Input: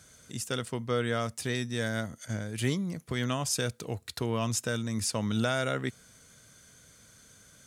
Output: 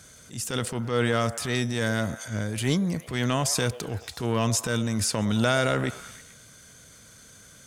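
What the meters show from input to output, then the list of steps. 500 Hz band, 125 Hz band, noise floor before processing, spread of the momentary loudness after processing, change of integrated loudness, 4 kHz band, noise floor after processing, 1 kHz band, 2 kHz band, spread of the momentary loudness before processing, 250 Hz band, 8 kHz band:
+5.0 dB, +5.5 dB, -58 dBFS, 10 LU, +5.0 dB, +5.0 dB, -51 dBFS, +6.0 dB, +5.5 dB, 8 LU, +5.5 dB, +5.0 dB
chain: transient shaper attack -9 dB, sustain +5 dB; delay with a stepping band-pass 0.109 s, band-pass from 620 Hz, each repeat 0.7 oct, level -11 dB; gain +6 dB

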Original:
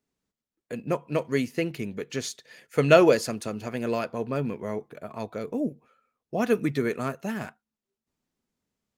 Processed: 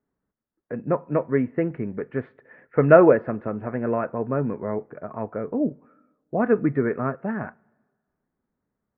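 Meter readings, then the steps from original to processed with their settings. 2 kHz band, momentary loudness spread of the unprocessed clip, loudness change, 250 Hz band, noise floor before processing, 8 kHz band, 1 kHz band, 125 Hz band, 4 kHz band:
+0.5 dB, 16 LU, +3.5 dB, +4.0 dB, under -85 dBFS, under -40 dB, +4.0 dB, +4.0 dB, under -25 dB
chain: steep low-pass 1800 Hz 36 dB/oct; two-slope reverb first 0.2 s, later 1.5 s, from -20 dB, DRR 17.5 dB; gain +4 dB

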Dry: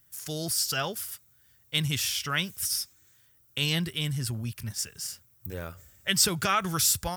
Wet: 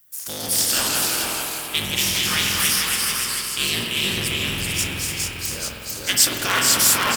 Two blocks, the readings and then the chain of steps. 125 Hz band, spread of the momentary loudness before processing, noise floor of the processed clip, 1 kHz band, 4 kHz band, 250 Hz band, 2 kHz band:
0.0 dB, 15 LU, -33 dBFS, +6.5 dB, +9.5 dB, +3.5 dB, +10.5 dB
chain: cycle switcher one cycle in 3, inverted; tilt +2 dB/oct; in parallel at -11 dB: bit-crush 7-bit; on the sum: echoes that change speed 0.125 s, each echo -1 st, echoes 3; doubler 26 ms -12 dB; on a send: echo 0.442 s -6 dB; on the sum: spring tank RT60 3.3 s, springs 47 ms, chirp 65 ms, DRR 1 dB; gain -1 dB

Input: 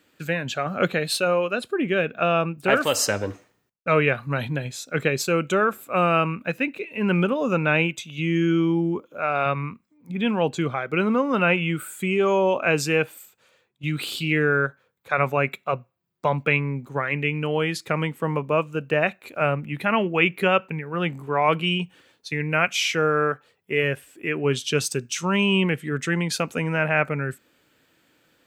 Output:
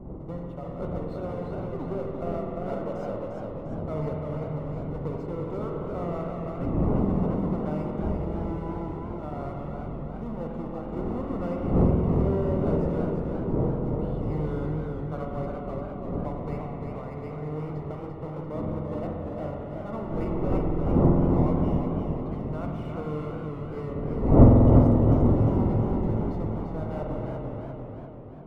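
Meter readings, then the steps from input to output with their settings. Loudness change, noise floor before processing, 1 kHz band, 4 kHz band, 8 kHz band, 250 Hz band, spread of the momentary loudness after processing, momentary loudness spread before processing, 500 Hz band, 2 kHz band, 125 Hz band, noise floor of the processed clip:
-4.0 dB, -67 dBFS, -9.5 dB, under -25 dB, under -30 dB, -0.5 dB, 13 LU, 8 LU, -5.5 dB, -26.0 dB, +2.5 dB, -37 dBFS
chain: half-waves squared off; wind noise 280 Hz -14 dBFS; polynomial smoothing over 65 samples; spring tank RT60 3.3 s, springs 46 ms, chirp 55 ms, DRR 0 dB; warbling echo 0.346 s, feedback 51%, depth 102 cents, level -5 dB; gain -18 dB

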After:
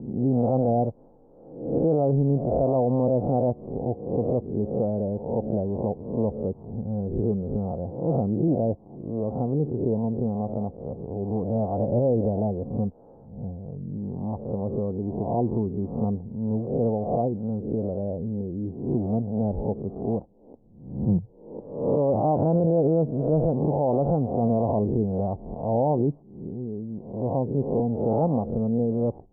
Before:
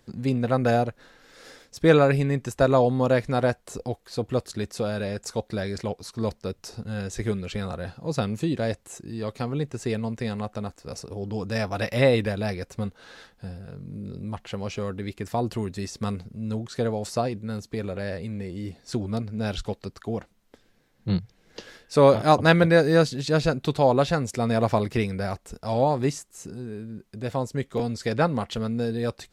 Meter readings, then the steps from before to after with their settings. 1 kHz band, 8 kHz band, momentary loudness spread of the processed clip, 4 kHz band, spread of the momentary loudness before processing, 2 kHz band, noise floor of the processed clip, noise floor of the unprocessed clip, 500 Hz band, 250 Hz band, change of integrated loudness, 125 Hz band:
-3.0 dB, under -40 dB, 11 LU, under -40 dB, 16 LU, under -40 dB, -51 dBFS, -63 dBFS, -0.5 dB, +2.0 dB, -0.5 dB, +1.0 dB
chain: spectral swells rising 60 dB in 0.66 s; steep low-pass 860 Hz 48 dB/oct; bell 210 Hz +3.5 dB 1.8 oct; limiter -14.5 dBFS, peak gain reduction 10 dB

